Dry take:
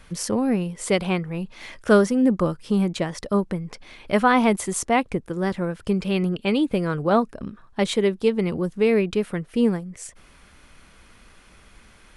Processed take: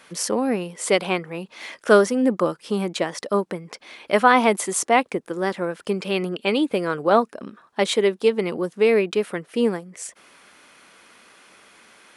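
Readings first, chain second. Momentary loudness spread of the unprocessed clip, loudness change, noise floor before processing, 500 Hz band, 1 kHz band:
13 LU, +1.0 dB, −52 dBFS, +2.5 dB, +3.5 dB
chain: high-pass filter 320 Hz 12 dB per octave
level +3.5 dB

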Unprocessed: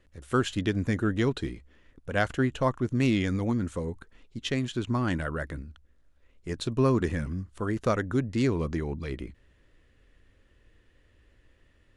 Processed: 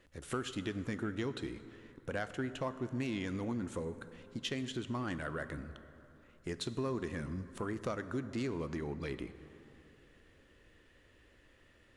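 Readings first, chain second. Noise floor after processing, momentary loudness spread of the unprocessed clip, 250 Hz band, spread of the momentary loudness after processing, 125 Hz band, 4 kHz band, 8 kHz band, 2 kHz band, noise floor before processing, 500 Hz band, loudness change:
−64 dBFS, 14 LU, −10.0 dB, 11 LU, −12.5 dB, −6.5 dB, −6.0 dB, −9.0 dB, −64 dBFS, −9.5 dB, −10.5 dB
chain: low-shelf EQ 110 Hz −11.5 dB
downward compressor 3 to 1, threshold −40 dBFS, peak gain reduction 14.5 dB
soft clipping −27 dBFS, distortion −25 dB
dense smooth reverb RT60 3.2 s, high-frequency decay 0.5×, DRR 11.5 dB
level +2.5 dB

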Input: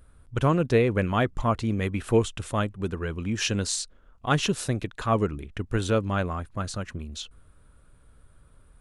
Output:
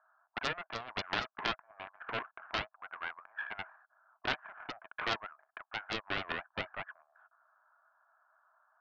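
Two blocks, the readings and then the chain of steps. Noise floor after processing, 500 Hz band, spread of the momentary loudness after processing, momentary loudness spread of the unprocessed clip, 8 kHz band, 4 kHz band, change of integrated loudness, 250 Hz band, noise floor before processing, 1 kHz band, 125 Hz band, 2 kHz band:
−85 dBFS, −18.5 dB, 11 LU, 13 LU, −25.5 dB, −6.0 dB, −12.0 dB, −22.5 dB, −57 dBFS, −9.5 dB, −26.5 dB, −3.5 dB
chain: Chebyshev band-pass filter 640–1,700 Hz, order 5
downward compressor 4 to 1, threshold −33 dBFS, peak gain reduction 11.5 dB
highs frequency-modulated by the lows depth 0.97 ms
level +1 dB

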